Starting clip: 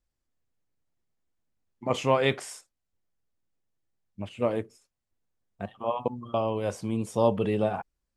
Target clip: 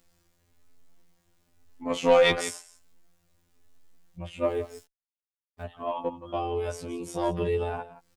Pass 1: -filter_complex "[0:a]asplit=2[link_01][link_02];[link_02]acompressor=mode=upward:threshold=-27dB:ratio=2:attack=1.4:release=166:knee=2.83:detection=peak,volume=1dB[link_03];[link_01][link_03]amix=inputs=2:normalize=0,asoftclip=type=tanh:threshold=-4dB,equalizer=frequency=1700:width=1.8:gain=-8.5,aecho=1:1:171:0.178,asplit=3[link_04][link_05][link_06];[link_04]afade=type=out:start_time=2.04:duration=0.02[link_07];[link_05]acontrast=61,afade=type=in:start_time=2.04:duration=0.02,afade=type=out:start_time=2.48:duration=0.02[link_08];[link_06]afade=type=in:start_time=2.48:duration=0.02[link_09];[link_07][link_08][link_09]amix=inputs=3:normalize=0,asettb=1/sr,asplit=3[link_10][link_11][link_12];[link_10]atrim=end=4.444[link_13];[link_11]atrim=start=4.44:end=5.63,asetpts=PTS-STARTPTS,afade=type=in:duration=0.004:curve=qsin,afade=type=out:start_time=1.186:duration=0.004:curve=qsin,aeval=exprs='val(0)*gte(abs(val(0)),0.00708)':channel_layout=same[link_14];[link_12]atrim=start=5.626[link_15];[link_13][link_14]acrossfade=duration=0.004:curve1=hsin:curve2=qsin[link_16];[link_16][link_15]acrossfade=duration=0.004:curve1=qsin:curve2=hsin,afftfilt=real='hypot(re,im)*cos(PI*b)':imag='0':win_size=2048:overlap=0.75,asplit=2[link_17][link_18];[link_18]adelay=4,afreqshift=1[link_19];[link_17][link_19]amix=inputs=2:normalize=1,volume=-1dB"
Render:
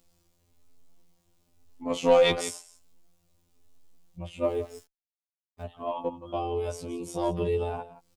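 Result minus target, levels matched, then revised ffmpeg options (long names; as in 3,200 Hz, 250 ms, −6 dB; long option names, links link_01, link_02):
2,000 Hz band −4.0 dB
-filter_complex "[0:a]asplit=2[link_01][link_02];[link_02]acompressor=mode=upward:threshold=-27dB:ratio=2:attack=1.4:release=166:knee=2.83:detection=peak,volume=1dB[link_03];[link_01][link_03]amix=inputs=2:normalize=0,asoftclip=type=tanh:threshold=-4dB,aecho=1:1:171:0.178,asplit=3[link_04][link_05][link_06];[link_04]afade=type=out:start_time=2.04:duration=0.02[link_07];[link_05]acontrast=61,afade=type=in:start_time=2.04:duration=0.02,afade=type=out:start_time=2.48:duration=0.02[link_08];[link_06]afade=type=in:start_time=2.48:duration=0.02[link_09];[link_07][link_08][link_09]amix=inputs=3:normalize=0,asettb=1/sr,asplit=3[link_10][link_11][link_12];[link_10]atrim=end=4.444[link_13];[link_11]atrim=start=4.44:end=5.63,asetpts=PTS-STARTPTS,afade=type=in:duration=0.004:curve=qsin,afade=type=out:start_time=1.186:duration=0.004:curve=qsin,aeval=exprs='val(0)*gte(abs(val(0)),0.00708)':channel_layout=same[link_14];[link_12]atrim=start=5.626[link_15];[link_13][link_14]acrossfade=duration=0.004:curve1=hsin:curve2=qsin[link_16];[link_16][link_15]acrossfade=duration=0.004:curve1=qsin:curve2=hsin,afftfilt=real='hypot(re,im)*cos(PI*b)':imag='0':win_size=2048:overlap=0.75,asplit=2[link_17][link_18];[link_18]adelay=4,afreqshift=1[link_19];[link_17][link_19]amix=inputs=2:normalize=1,volume=-1dB"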